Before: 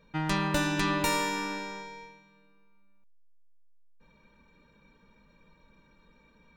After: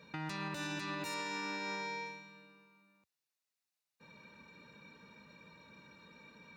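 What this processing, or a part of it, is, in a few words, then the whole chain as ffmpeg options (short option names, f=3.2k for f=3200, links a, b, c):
broadcast voice chain: -filter_complex "[0:a]asettb=1/sr,asplit=3[a][b][c];[a]atrim=end=1.144[d];[b]atrim=start=1.14:end=2.06,asetpts=PTS-STARTPTS,afade=t=in:d=0.004:c=qsin,afade=t=out:st=0.916:d=0.004:c=qsin,lowpass=6.5k[e];[c]atrim=start=2.056[f];[d][e]acrossfade=d=0.004:c1=hsin:c2=qsin[g];[g][f]acrossfade=d=0.004:c1=qsin:c2=hsin,highpass=f=86:w=0.5412,highpass=f=86:w=1.3066,deesser=0.5,acompressor=threshold=-41dB:ratio=4,equalizer=f=3.7k:t=o:w=2.2:g=6,alimiter=level_in=9.5dB:limit=-24dB:level=0:latency=1:release=102,volume=-9.5dB,bandreject=f=3.2k:w=8.7,volume=3dB"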